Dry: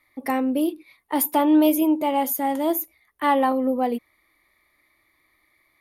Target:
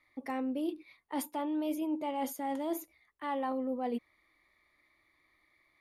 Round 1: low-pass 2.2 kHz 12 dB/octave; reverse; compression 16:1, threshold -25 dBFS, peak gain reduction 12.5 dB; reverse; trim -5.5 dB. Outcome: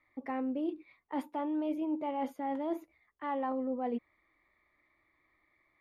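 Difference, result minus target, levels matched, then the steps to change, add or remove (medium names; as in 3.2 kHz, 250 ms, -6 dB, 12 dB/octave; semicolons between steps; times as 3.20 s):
8 kHz band -20.0 dB
change: low-pass 7.3 kHz 12 dB/octave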